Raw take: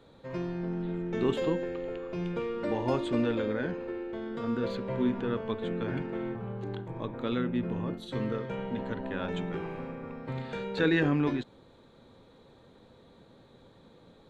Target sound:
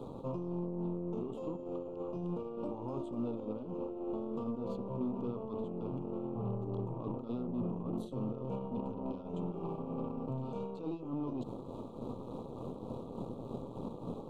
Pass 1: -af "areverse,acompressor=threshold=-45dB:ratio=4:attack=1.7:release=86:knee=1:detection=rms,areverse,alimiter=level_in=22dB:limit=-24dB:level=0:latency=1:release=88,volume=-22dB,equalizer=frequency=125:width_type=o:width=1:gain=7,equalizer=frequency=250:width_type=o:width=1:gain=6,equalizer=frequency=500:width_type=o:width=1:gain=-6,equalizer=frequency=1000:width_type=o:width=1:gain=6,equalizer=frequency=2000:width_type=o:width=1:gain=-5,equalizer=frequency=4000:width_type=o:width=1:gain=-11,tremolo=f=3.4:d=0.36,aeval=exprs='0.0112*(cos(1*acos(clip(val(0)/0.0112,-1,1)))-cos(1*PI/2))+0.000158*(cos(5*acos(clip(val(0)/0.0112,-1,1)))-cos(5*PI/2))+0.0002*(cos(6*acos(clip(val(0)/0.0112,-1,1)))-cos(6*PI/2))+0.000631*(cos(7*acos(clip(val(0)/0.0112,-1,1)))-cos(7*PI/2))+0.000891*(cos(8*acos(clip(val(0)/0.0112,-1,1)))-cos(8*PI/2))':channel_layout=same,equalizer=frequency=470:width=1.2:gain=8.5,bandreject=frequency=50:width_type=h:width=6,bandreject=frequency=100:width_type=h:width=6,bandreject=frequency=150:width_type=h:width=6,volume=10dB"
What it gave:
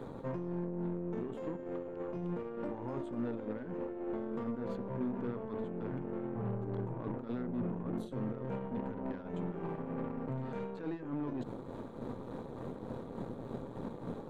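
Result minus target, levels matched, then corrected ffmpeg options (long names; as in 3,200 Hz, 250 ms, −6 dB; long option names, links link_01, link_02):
2,000 Hz band +15.5 dB
-af "areverse,acompressor=threshold=-45dB:ratio=4:attack=1.7:release=86:knee=1:detection=rms,areverse,alimiter=level_in=22dB:limit=-24dB:level=0:latency=1:release=88,volume=-22dB,equalizer=frequency=125:width_type=o:width=1:gain=7,equalizer=frequency=250:width_type=o:width=1:gain=6,equalizer=frequency=500:width_type=o:width=1:gain=-6,equalizer=frequency=1000:width_type=o:width=1:gain=6,equalizer=frequency=2000:width_type=o:width=1:gain=-5,equalizer=frequency=4000:width_type=o:width=1:gain=-11,tremolo=f=3.4:d=0.36,aeval=exprs='0.0112*(cos(1*acos(clip(val(0)/0.0112,-1,1)))-cos(1*PI/2))+0.000158*(cos(5*acos(clip(val(0)/0.0112,-1,1)))-cos(5*PI/2))+0.0002*(cos(6*acos(clip(val(0)/0.0112,-1,1)))-cos(6*PI/2))+0.000631*(cos(7*acos(clip(val(0)/0.0112,-1,1)))-cos(7*PI/2))+0.000891*(cos(8*acos(clip(val(0)/0.0112,-1,1)))-cos(8*PI/2))':channel_layout=same,asuperstop=centerf=1800:order=8:qfactor=1.4,equalizer=frequency=470:width=1.2:gain=8.5,bandreject=frequency=50:width_type=h:width=6,bandreject=frequency=100:width_type=h:width=6,bandreject=frequency=150:width_type=h:width=6,volume=10dB"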